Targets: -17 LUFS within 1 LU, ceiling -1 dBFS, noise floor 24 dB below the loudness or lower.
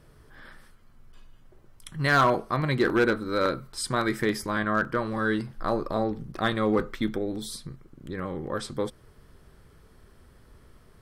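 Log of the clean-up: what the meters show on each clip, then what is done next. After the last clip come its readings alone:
clipped 0.3%; flat tops at -15.0 dBFS; loudness -27.0 LUFS; peak -15.0 dBFS; loudness target -17.0 LUFS
-> clip repair -15 dBFS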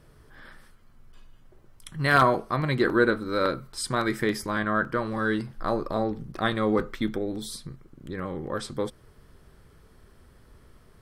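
clipped 0.0%; loudness -26.5 LUFS; peak -6.0 dBFS; loudness target -17.0 LUFS
-> gain +9.5 dB; limiter -1 dBFS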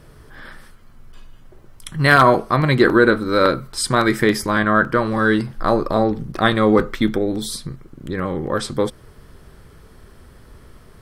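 loudness -17.5 LUFS; peak -1.0 dBFS; noise floor -46 dBFS

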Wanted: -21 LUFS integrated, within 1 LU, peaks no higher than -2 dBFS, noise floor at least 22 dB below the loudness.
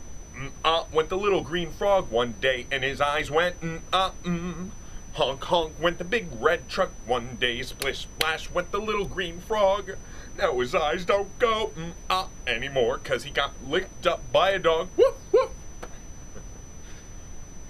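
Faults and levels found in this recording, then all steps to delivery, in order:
steady tone 6000 Hz; tone level -49 dBFS; noise floor -43 dBFS; noise floor target -48 dBFS; loudness -26.0 LUFS; peak -5.5 dBFS; loudness target -21.0 LUFS
-> notch 6000 Hz, Q 30; noise print and reduce 6 dB; gain +5 dB; limiter -2 dBFS

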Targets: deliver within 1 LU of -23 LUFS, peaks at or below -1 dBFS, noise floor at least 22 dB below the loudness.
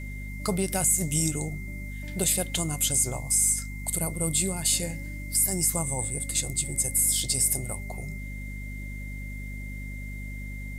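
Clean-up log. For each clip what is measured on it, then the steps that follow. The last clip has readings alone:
hum 50 Hz; harmonics up to 250 Hz; hum level -34 dBFS; steady tone 2100 Hz; tone level -42 dBFS; loudness -25.0 LUFS; peak -12.5 dBFS; loudness target -23.0 LUFS
-> de-hum 50 Hz, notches 5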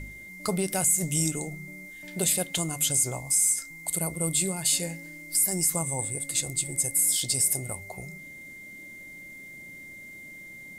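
hum none; steady tone 2100 Hz; tone level -42 dBFS
-> notch 2100 Hz, Q 30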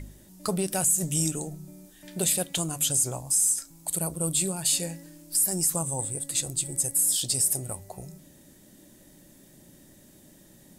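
steady tone none; loudness -25.0 LUFS; peak -13.0 dBFS; loudness target -23.0 LUFS
-> gain +2 dB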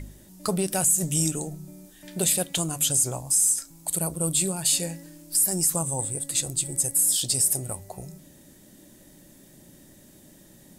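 loudness -23.0 LUFS; peak -11.0 dBFS; noise floor -53 dBFS

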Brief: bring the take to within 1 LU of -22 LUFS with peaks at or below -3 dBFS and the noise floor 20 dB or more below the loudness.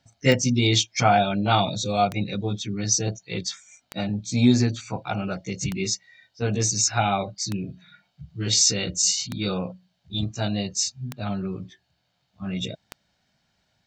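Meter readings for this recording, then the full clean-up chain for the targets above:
clicks 8; loudness -24.0 LUFS; peak -3.5 dBFS; loudness target -22.0 LUFS
-> de-click; gain +2 dB; limiter -3 dBFS

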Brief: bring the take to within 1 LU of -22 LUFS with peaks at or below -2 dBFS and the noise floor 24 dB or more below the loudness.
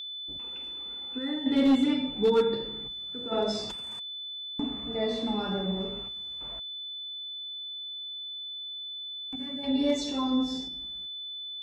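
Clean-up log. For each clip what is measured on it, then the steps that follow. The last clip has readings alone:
clipped 0.3%; flat tops at -17.0 dBFS; steady tone 3500 Hz; tone level -36 dBFS; loudness -30.5 LUFS; peak -17.0 dBFS; loudness target -22.0 LUFS
-> clip repair -17 dBFS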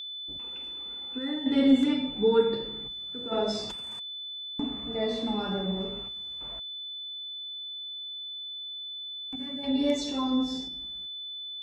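clipped 0.0%; steady tone 3500 Hz; tone level -36 dBFS
-> notch 3500 Hz, Q 30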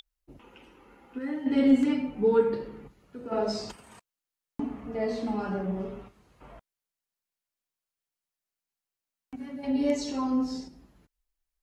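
steady tone none; loudness -28.5 LUFS; peak -11.0 dBFS; loudness target -22.0 LUFS
-> gain +6.5 dB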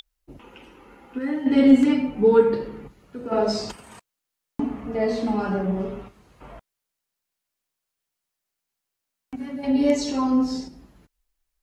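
loudness -22.0 LUFS; peak -4.5 dBFS; noise floor -84 dBFS

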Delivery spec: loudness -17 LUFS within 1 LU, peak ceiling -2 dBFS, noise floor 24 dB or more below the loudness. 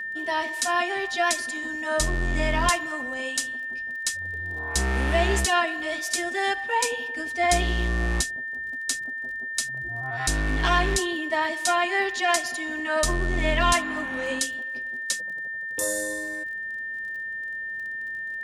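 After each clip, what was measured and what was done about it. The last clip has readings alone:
ticks 30/s; steady tone 1800 Hz; tone level -30 dBFS; loudness -26.0 LUFS; peak -7.5 dBFS; loudness target -17.0 LUFS
-> de-click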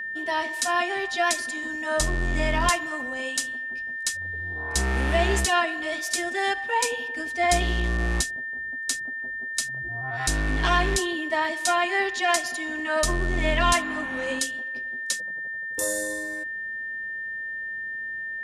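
ticks 0.11/s; steady tone 1800 Hz; tone level -30 dBFS
-> notch 1800 Hz, Q 30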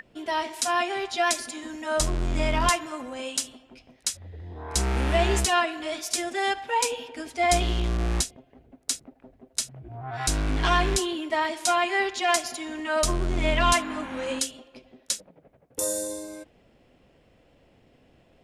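steady tone none; loudness -26.5 LUFS; peak -8.0 dBFS; loudness target -17.0 LUFS
-> gain +9.5 dB; limiter -2 dBFS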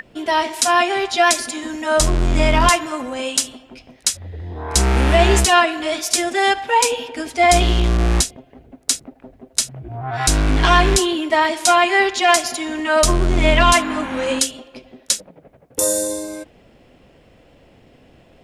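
loudness -17.5 LUFS; peak -2.0 dBFS; noise floor -52 dBFS

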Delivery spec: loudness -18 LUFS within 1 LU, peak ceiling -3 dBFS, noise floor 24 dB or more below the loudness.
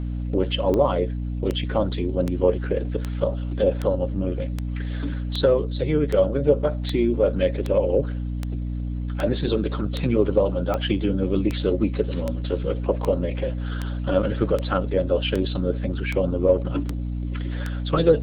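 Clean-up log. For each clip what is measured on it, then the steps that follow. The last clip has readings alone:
clicks 23; hum 60 Hz; harmonics up to 300 Hz; hum level -25 dBFS; loudness -24.0 LUFS; peak -5.5 dBFS; loudness target -18.0 LUFS
-> de-click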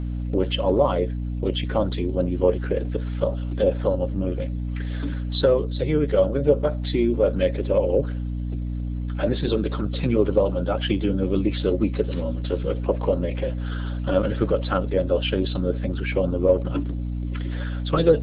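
clicks 0; hum 60 Hz; harmonics up to 300 Hz; hum level -25 dBFS
-> notches 60/120/180/240/300 Hz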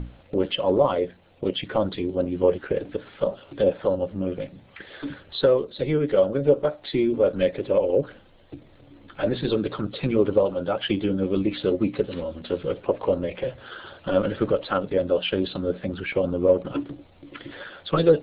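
hum none; loudness -24.5 LUFS; peak -6.5 dBFS; loudness target -18.0 LUFS
-> gain +6.5 dB; limiter -3 dBFS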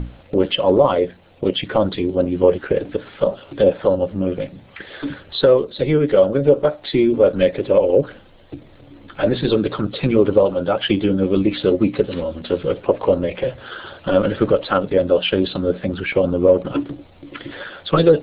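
loudness -18.5 LUFS; peak -3.0 dBFS; noise floor -47 dBFS

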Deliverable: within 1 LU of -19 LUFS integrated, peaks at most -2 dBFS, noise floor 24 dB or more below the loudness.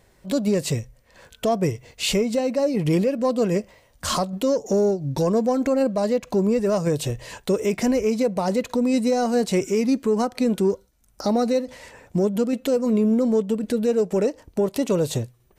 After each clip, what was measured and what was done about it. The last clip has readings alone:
loudness -22.5 LUFS; peak -13.0 dBFS; loudness target -19.0 LUFS
-> gain +3.5 dB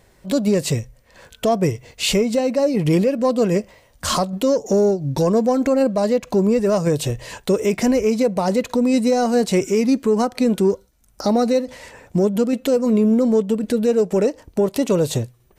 loudness -19.0 LUFS; peak -9.5 dBFS; noise floor -56 dBFS

